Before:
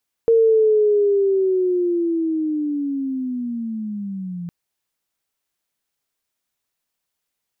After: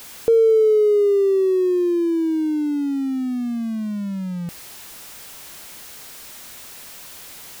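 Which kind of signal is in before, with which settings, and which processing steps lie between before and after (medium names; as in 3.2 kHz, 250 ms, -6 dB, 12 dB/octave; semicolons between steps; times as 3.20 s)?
sweep linear 460 Hz -> 170 Hz -10.5 dBFS -> -26.5 dBFS 4.21 s
jump at every zero crossing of -33 dBFS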